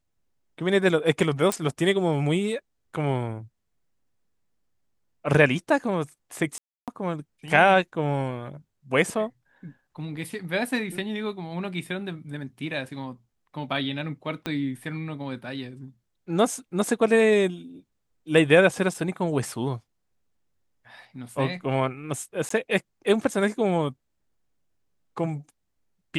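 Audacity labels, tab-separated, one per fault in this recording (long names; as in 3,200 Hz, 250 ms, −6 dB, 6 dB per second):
1.520000	1.520000	click
6.580000	6.880000	drop-out 297 ms
14.460000	14.460000	click −15 dBFS
18.940000	18.940000	drop-out 3 ms
22.490000	22.500000	drop-out 14 ms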